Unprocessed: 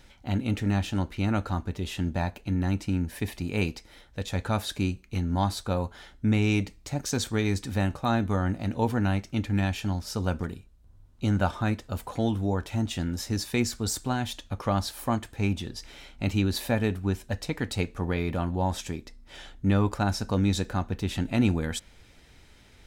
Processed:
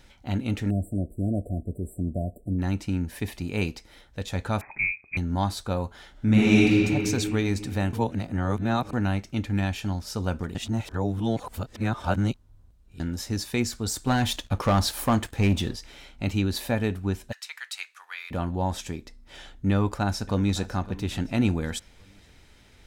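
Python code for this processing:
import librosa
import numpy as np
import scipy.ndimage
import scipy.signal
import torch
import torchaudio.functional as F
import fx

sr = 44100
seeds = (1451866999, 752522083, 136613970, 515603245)

y = fx.brickwall_bandstop(x, sr, low_hz=730.0, high_hz=7500.0, at=(0.69, 2.58), fade=0.02)
y = fx.freq_invert(y, sr, carrier_hz=2500, at=(4.61, 5.17))
y = fx.reverb_throw(y, sr, start_s=6.11, length_s=0.7, rt60_s=2.9, drr_db=-7.5)
y = fx.leveller(y, sr, passes=2, at=(14.07, 15.76))
y = fx.highpass(y, sr, hz=1300.0, slope=24, at=(17.31, 18.3), fade=0.02)
y = fx.echo_throw(y, sr, start_s=19.71, length_s=0.99, ms=560, feedback_pct=40, wet_db=-17.5)
y = fx.edit(y, sr, fx.reverse_span(start_s=7.93, length_s=1.0),
    fx.reverse_span(start_s=10.55, length_s=2.45), tone=tone)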